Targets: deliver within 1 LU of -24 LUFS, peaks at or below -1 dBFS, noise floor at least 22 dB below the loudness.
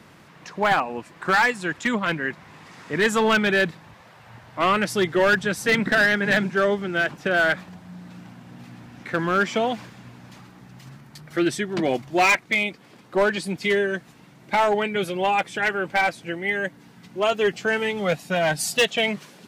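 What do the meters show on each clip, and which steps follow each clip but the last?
clipped samples 1.0%; clipping level -13.5 dBFS; loudness -22.5 LUFS; peak level -13.5 dBFS; loudness target -24.0 LUFS
-> clip repair -13.5 dBFS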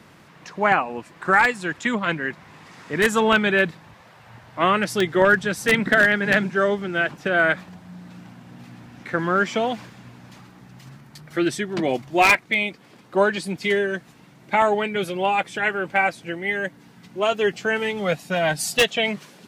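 clipped samples 0.0%; loudness -21.5 LUFS; peak level -4.5 dBFS; loudness target -24.0 LUFS
-> trim -2.5 dB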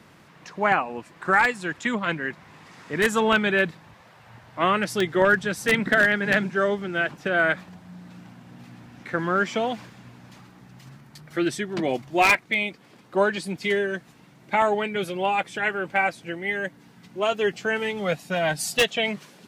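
loudness -24.0 LUFS; peak level -7.0 dBFS; noise floor -53 dBFS

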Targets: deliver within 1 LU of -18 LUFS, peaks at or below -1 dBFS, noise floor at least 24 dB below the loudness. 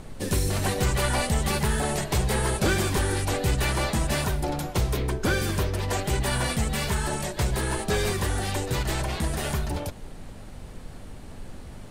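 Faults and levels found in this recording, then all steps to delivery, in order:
hum 50 Hz; highest harmonic 250 Hz; hum level -40 dBFS; noise floor -41 dBFS; noise floor target -51 dBFS; loudness -26.5 LUFS; peak level -13.5 dBFS; loudness target -18.0 LUFS
-> de-hum 50 Hz, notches 5; noise print and reduce 10 dB; trim +8.5 dB

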